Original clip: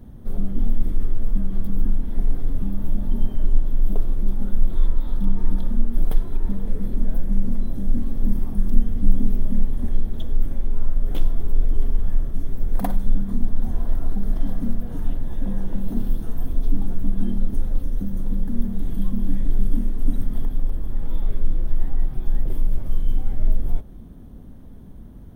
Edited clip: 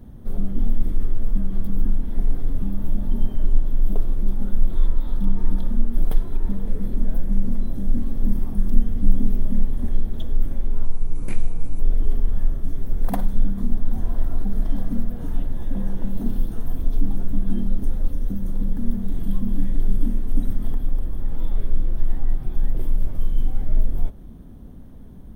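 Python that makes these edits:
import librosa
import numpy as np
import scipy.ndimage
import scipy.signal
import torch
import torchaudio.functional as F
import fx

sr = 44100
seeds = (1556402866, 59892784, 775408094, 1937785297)

y = fx.edit(x, sr, fx.speed_span(start_s=10.85, length_s=0.65, speed=0.69), tone=tone)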